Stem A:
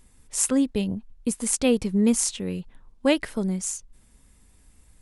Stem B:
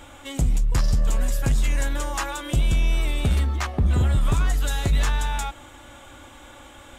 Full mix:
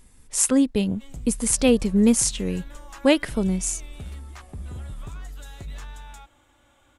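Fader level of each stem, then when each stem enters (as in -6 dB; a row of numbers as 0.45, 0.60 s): +3.0, -16.0 dB; 0.00, 0.75 s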